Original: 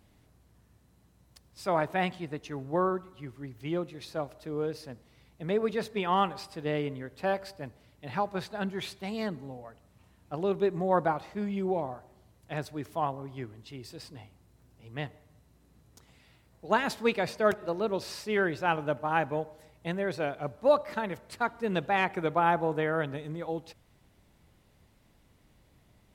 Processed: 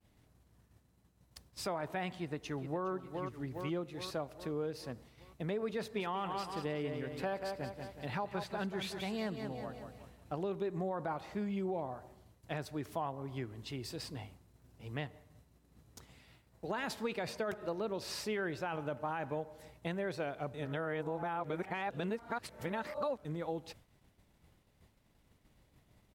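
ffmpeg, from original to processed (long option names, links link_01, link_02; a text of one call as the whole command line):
ffmpeg -i in.wav -filter_complex "[0:a]asplit=2[link_01][link_02];[link_02]afade=type=in:start_time=2.16:duration=0.01,afade=type=out:start_time=2.87:duration=0.01,aecho=0:1:410|820|1230|1640|2050|2460:0.281838|0.155011|0.0852561|0.0468908|0.02579|0.0141845[link_03];[link_01][link_03]amix=inputs=2:normalize=0,asettb=1/sr,asplit=3[link_04][link_05][link_06];[link_04]atrim=end=5.814[link_07];[link_05]atrim=start=5.81:end=10.47,asetpts=PTS-STARTPTS,afade=type=in:duration=0.004:curve=qsin,afade=type=out:start_time=4.656:duration=0.004:curve=qsin,aecho=1:1:184|368|552|736|920:0.335|0.141|0.0591|0.0248|0.0104,atrim=end_sample=205506[link_08];[link_06]atrim=start=10.466[link_09];[link_07][link_08]acrossfade=duration=0.004:curve1=hsin:curve2=qsin[link_10];[link_10][link_09]acrossfade=duration=0.004:curve1=qsin:curve2=hsin,asplit=3[link_11][link_12][link_13];[link_11]atrim=end=20.542[link_14];[link_12]atrim=start=20.538:end=23.252,asetpts=PTS-STARTPTS,areverse[link_15];[link_13]atrim=start=23.248[link_16];[link_14][link_15]acrossfade=duration=0.004:curve1=hsin:curve2=hsin[link_17];[link_17][link_16]acrossfade=duration=0.004:curve1=hsin:curve2=hsin,alimiter=limit=-21dB:level=0:latency=1:release=21,acompressor=threshold=-42dB:ratio=2.5,agate=range=-33dB:threshold=-55dB:ratio=3:detection=peak,volume=3.5dB" out.wav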